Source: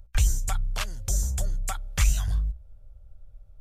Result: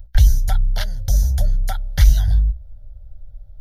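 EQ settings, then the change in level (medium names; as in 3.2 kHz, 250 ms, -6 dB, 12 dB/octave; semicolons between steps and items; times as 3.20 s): tilt shelf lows +5.5 dB, about 870 Hz; treble shelf 2.1 kHz +8.5 dB; static phaser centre 1.7 kHz, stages 8; +5.0 dB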